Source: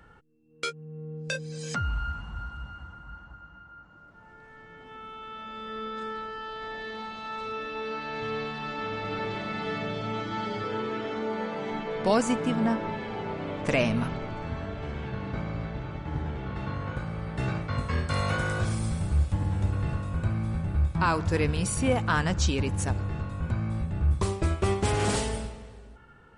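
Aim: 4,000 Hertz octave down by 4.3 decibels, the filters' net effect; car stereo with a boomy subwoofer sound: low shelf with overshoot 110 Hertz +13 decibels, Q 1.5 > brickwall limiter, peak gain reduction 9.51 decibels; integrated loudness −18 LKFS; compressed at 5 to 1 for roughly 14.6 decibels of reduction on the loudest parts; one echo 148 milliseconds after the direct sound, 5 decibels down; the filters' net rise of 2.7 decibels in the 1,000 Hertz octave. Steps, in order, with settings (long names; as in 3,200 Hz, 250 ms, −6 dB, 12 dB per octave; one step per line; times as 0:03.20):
parametric band 1,000 Hz +4 dB
parametric band 4,000 Hz −6 dB
downward compressor 5 to 1, threshold −36 dBFS
low shelf with overshoot 110 Hz +13 dB, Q 1.5
single-tap delay 148 ms −5 dB
level +16 dB
brickwall limiter −7 dBFS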